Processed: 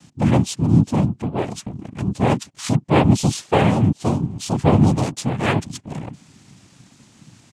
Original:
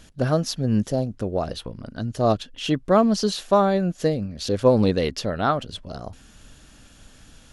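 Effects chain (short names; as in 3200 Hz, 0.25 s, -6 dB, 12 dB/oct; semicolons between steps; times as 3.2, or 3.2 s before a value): comb 1.4 ms, depth 43%; noise vocoder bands 4; tone controls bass +12 dB, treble +3 dB; gain -2 dB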